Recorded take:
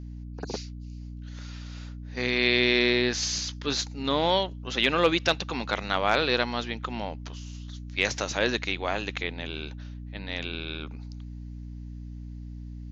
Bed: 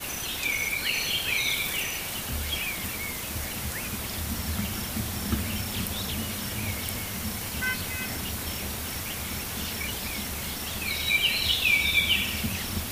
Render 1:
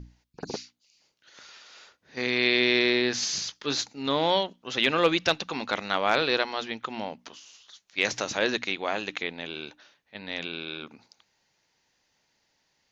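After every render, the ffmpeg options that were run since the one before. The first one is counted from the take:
-af "bandreject=f=60:t=h:w=6,bandreject=f=120:t=h:w=6,bandreject=f=180:t=h:w=6,bandreject=f=240:t=h:w=6,bandreject=f=300:t=h:w=6"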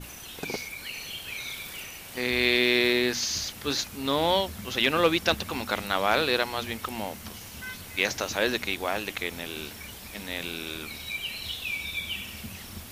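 -filter_complex "[1:a]volume=-10dB[a];[0:a][a]amix=inputs=2:normalize=0"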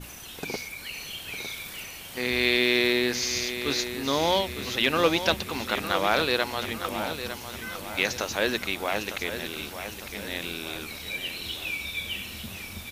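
-af "aecho=1:1:905|1810|2715|3620|4525:0.316|0.155|0.0759|0.0372|0.0182"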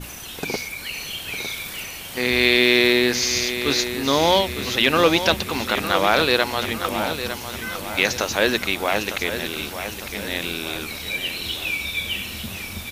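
-af "volume=6.5dB,alimiter=limit=-3dB:level=0:latency=1"

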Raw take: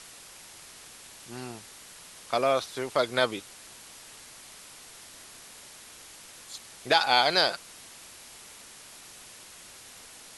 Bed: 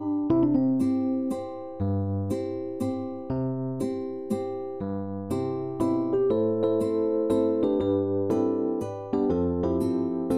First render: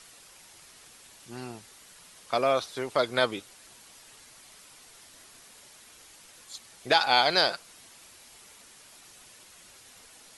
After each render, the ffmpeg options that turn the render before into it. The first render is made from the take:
-af "afftdn=nr=6:nf=-49"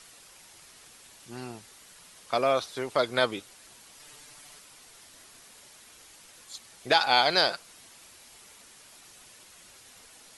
-filter_complex "[0:a]asettb=1/sr,asplit=3[a][b][c];[a]atrim=end=3.994[d];[b]atrim=start=3.99:end=4.59,asetpts=PTS-STARTPTS,afade=t=in:d=0.004:c=qsin,afade=t=out:st=0.596:d=0.004:c=qsin,aecho=1:1:6.8:0.8,atrim=end_sample=26460[e];[c]atrim=start=4.586[f];[d][e]acrossfade=d=0.004:c1=hsin:c2=qsin[g];[g][f]acrossfade=d=0.004:c1=qsin:c2=hsin"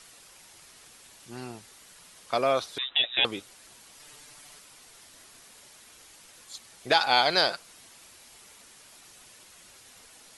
-filter_complex "[0:a]asettb=1/sr,asplit=3[a][b][c];[a]atrim=end=2.784[d];[b]atrim=start=2.78:end=3.25,asetpts=PTS-STARTPTS,afade=t=in:d=0.004:c=qsin,afade=t=out:st=0.466:d=0.004:c=qsin,lowpass=f=3.4k:t=q:w=0.5098,lowpass=f=3.4k:t=q:w=0.6013,lowpass=f=3.4k:t=q:w=0.9,lowpass=f=3.4k:t=q:w=2.563,afreqshift=-4000[e];[c]atrim=start=3.246[f];[d][e]acrossfade=d=0.004:c1=hsin:c2=qsin[g];[g][f]acrossfade=d=0.004:c1=qsin:c2=hsin"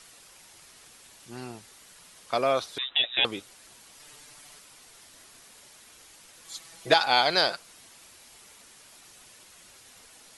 -filter_complex "[0:a]asettb=1/sr,asplit=3[a][b][c];[a]atrim=end=6.444[d];[b]atrim=start=6.44:end=6.94,asetpts=PTS-STARTPTS,afade=t=in:d=0.004:c=qsin,afade=t=out:st=0.496:d=0.004:c=qsin,aecho=1:1:6.1:0.99,atrim=end_sample=22050[e];[c]atrim=start=6.936[f];[d][e]acrossfade=d=0.004:c1=hsin:c2=qsin[g];[g][f]acrossfade=d=0.004:c1=qsin:c2=hsin"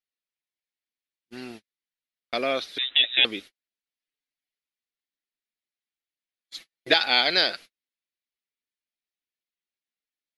-af "equalizer=f=125:t=o:w=1:g=-9,equalizer=f=250:t=o:w=1:g=5,equalizer=f=1k:t=o:w=1:g=-9,equalizer=f=2k:t=o:w=1:g=7,equalizer=f=4k:t=o:w=1:g=6,equalizer=f=8k:t=o:w=1:g=-11,agate=range=-45dB:threshold=-41dB:ratio=16:detection=peak"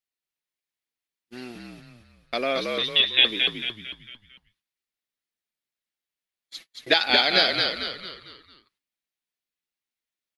-filter_complex "[0:a]asplit=6[a][b][c][d][e][f];[b]adelay=225,afreqshift=-57,volume=-3.5dB[g];[c]adelay=450,afreqshift=-114,volume=-10.8dB[h];[d]adelay=675,afreqshift=-171,volume=-18.2dB[i];[e]adelay=900,afreqshift=-228,volume=-25.5dB[j];[f]adelay=1125,afreqshift=-285,volume=-32.8dB[k];[a][g][h][i][j][k]amix=inputs=6:normalize=0"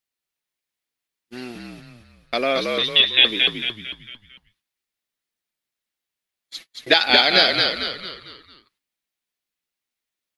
-af "volume=4.5dB,alimiter=limit=-1dB:level=0:latency=1"

